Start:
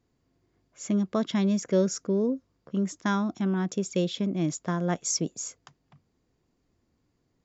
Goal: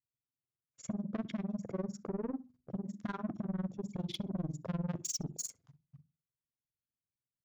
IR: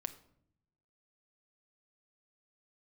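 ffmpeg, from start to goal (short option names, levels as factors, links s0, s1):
-filter_complex "[0:a]agate=range=0.0447:threshold=0.00141:ratio=16:detection=peak,afwtdn=0.0126,bass=f=250:g=4,treble=f=4000:g=-1,acontrast=55,equalizer=f=130:t=o:w=0.72:g=11,alimiter=limit=0.188:level=0:latency=1:release=127,acompressor=threshold=0.0316:ratio=8,bandreject=f=50:t=h:w=6,bandreject=f=100:t=h:w=6,bandreject=f=150:t=h:w=6,bandreject=f=200:t=h:w=6,bandreject=f=250:t=h:w=6,bandreject=f=300:t=h:w=6,bandreject=f=350:t=h:w=6,asoftclip=type=tanh:threshold=0.0211,tremolo=f=20:d=0.99,asplit=2[s0][s1];[s1]adelay=64,lowpass=f=2300:p=1,volume=0.1,asplit=2[s2][s3];[s3]adelay=64,lowpass=f=2300:p=1,volume=0.23[s4];[s0][s2][s4]amix=inputs=3:normalize=0,volume=1.58"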